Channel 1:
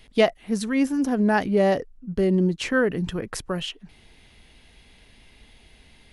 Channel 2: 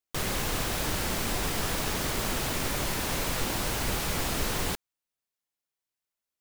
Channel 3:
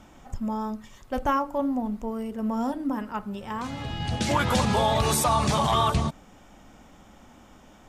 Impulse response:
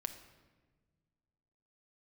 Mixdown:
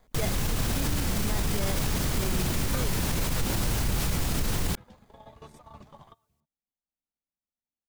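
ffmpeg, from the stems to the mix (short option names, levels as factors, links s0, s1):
-filter_complex "[0:a]acrusher=samples=16:mix=1:aa=0.000001,volume=0.335,asplit=2[s0][s1];[1:a]bass=f=250:g=11,treble=f=4000:g=3,volume=1.41[s2];[2:a]lowpass=f=2000:p=1,adelay=350,volume=0.106[s3];[s1]apad=whole_len=363193[s4];[s3][s4]sidechaingate=range=0.0224:threshold=0.00112:ratio=16:detection=peak[s5];[s0][s2][s5]amix=inputs=3:normalize=0,alimiter=limit=0.126:level=0:latency=1:release=73"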